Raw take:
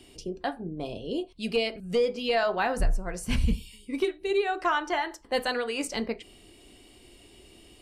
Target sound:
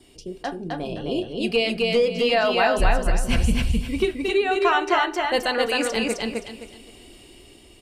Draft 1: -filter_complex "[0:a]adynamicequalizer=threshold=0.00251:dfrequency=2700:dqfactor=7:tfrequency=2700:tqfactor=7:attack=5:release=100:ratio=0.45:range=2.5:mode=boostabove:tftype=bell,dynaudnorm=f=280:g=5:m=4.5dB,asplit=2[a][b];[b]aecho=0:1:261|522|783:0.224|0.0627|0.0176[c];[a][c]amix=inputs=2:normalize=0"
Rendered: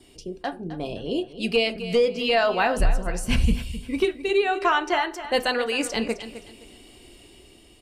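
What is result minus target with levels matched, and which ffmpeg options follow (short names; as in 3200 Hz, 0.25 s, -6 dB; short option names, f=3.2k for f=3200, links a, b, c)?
echo-to-direct -11 dB
-filter_complex "[0:a]adynamicequalizer=threshold=0.00251:dfrequency=2700:dqfactor=7:tfrequency=2700:tqfactor=7:attack=5:release=100:ratio=0.45:range=2.5:mode=boostabove:tftype=bell,dynaudnorm=f=280:g=5:m=4.5dB,asplit=2[a][b];[b]aecho=0:1:261|522|783|1044:0.794|0.222|0.0623|0.0174[c];[a][c]amix=inputs=2:normalize=0"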